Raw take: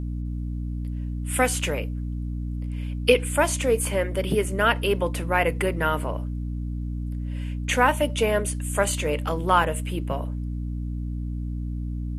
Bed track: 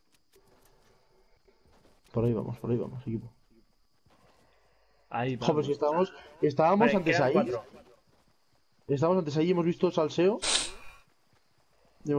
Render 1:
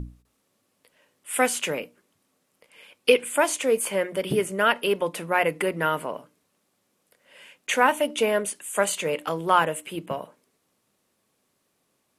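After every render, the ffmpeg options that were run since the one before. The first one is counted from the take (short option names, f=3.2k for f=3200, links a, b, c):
-af "bandreject=f=60:t=h:w=6,bandreject=f=120:t=h:w=6,bandreject=f=180:t=h:w=6,bandreject=f=240:t=h:w=6,bandreject=f=300:t=h:w=6"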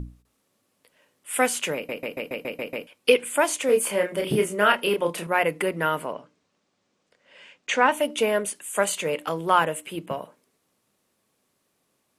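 -filter_complex "[0:a]asettb=1/sr,asplit=3[a][b][c];[a]atrim=end=3.664[d];[b]atrim=start=3.66:end=5.27,asetpts=PTS-STARTPTS,afade=t=in:d=0.004:c=qsin,afade=t=out:st=1.606:d=0.004:c=qsin,asplit=2[e][f];[f]adelay=29,volume=-4dB[g];[e][g]amix=inputs=2:normalize=0,atrim=end_sample=71001[h];[c]atrim=start=5.266[i];[d][h]acrossfade=d=0.004:c1=hsin:c2=qsin[j];[j][i]acrossfade=d=0.004:c1=qsin:c2=hsin,asettb=1/sr,asplit=3[k][l][m];[k]atrim=end=6.134[n];[l]atrim=start=6.13:end=7.92,asetpts=PTS-STARTPTS,afade=t=in:d=0.004:c=qsin,afade=t=out:st=1.786:d=0.004:c=qsin,lowpass=f=6.8k:w=0.5412,lowpass=f=6.8k:w=1.3066[o];[m]atrim=start=7.916[p];[n][o]acrossfade=d=0.004:c1=hsin:c2=qsin[q];[q][p]acrossfade=d=0.004:c1=qsin:c2=hsin,asplit=9[r][s][t][u][v][w][x][y][z];[r]atrim=end=1.892[aa];[s]atrim=start=1.748:end=1.892[ab];[t]atrim=start=1.748:end=1.892[ac];[u]atrim=start=1.748:end=1.892[ad];[v]atrim=start=1.748:end=1.892[ae];[w]atrim=start=1.748:end=1.892[af];[x]atrim=start=1.748:end=1.892[ag];[y]atrim=start=1.748:end=1.892[ah];[z]atrim=start=2.868[ai];[aa][ab]acrossfade=d=0.004:c1=hsin:c2=hsin[aj];[aj][ac]acrossfade=d=0.004:c1=hsin:c2=hsin[ak];[ak][ad]acrossfade=d=0.004:c1=hsin:c2=hsin[al];[al][ae]acrossfade=d=0.004:c1=hsin:c2=hsin[am];[am][af]acrossfade=d=0.004:c1=hsin:c2=hsin[an];[an][ag]acrossfade=d=0.004:c1=hsin:c2=hsin[ao];[ao][ah]acrossfade=d=0.004:c1=hsin:c2=hsin[ap];[ap][ai]acrossfade=d=0.004:c1=hsin:c2=hsin"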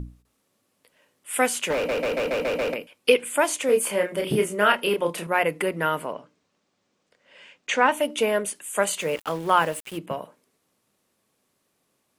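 -filter_complex "[0:a]asettb=1/sr,asplit=3[a][b][c];[a]atrim=end=1.704[d];[b]atrim=start=1.7:end=2.74,asetpts=PTS-STARTPTS,afade=t=in:d=0.004:c=qsin,afade=t=out:st=1.036:d=0.004:c=qsin,asplit=2[e][f];[f]highpass=f=720:p=1,volume=35dB,asoftclip=type=tanh:threshold=-16.5dB[g];[e][g]amix=inputs=2:normalize=0,lowpass=f=1.3k:p=1,volume=-6dB[h];[c]atrim=start=2.736[i];[d][h]acrossfade=d=0.004:c1=hsin:c2=qsin[j];[j][i]acrossfade=d=0.004:c1=qsin:c2=hsin,asettb=1/sr,asplit=3[k][l][m];[k]atrim=end=9.014[n];[l]atrim=start=9.01:end=9.98,asetpts=PTS-STARTPTS,afade=t=in:d=0.004:c=qsin,afade=t=out:st=0.966:d=0.004:c=qsin,aeval=exprs='val(0)*gte(abs(val(0)),0.0126)':c=same[o];[m]atrim=start=9.976[p];[n][o]acrossfade=d=0.004:c1=hsin:c2=qsin[q];[q][p]acrossfade=d=0.004:c1=qsin:c2=hsin"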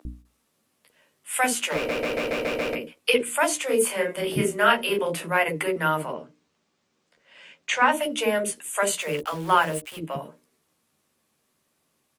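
-filter_complex "[0:a]asplit=2[a][b];[b]adelay=13,volume=-6dB[c];[a][c]amix=inputs=2:normalize=0,acrossover=split=520[d][e];[d]adelay=50[f];[f][e]amix=inputs=2:normalize=0"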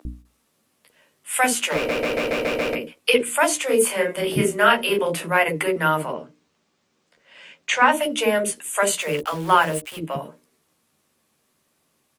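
-af "volume=3.5dB,alimiter=limit=-3dB:level=0:latency=1"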